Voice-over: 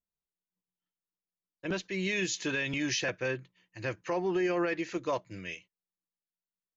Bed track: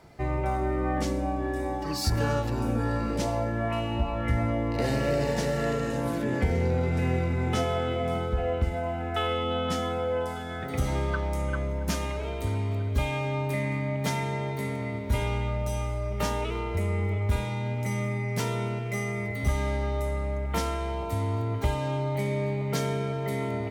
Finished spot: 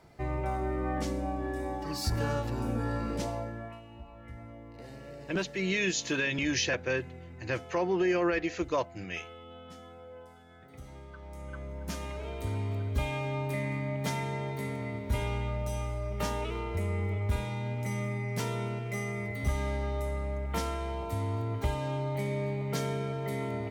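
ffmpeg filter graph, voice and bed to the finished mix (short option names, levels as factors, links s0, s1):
-filter_complex "[0:a]adelay=3650,volume=1.26[s0];[1:a]volume=3.76,afade=t=out:st=3.15:d=0.65:silence=0.16788,afade=t=in:st=11.13:d=1.48:silence=0.158489[s1];[s0][s1]amix=inputs=2:normalize=0"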